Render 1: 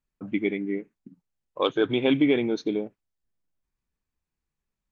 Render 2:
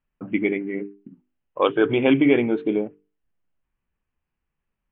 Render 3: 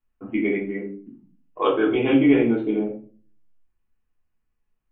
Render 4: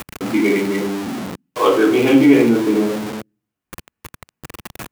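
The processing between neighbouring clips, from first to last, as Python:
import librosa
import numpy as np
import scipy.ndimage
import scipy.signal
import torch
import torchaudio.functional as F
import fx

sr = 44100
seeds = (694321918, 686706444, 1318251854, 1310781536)

y1 = scipy.signal.sosfilt(scipy.signal.ellip(4, 1.0, 40, 3000.0, 'lowpass', fs=sr, output='sos'), x)
y1 = fx.hum_notches(y1, sr, base_hz=50, count=9)
y1 = y1 * librosa.db_to_amplitude(6.0)
y2 = fx.room_shoebox(y1, sr, seeds[0], volume_m3=270.0, walls='furnished', distance_m=3.3)
y2 = y2 * librosa.db_to_amplitude(-7.5)
y3 = y2 + 0.5 * 10.0 ** (-24.5 / 20.0) * np.sign(y2)
y3 = scipy.signal.sosfilt(scipy.signal.butter(2, 110.0, 'highpass', fs=sr, output='sos'), y3)
y3 = y3 * librosa.db_to_amplitude(4.5)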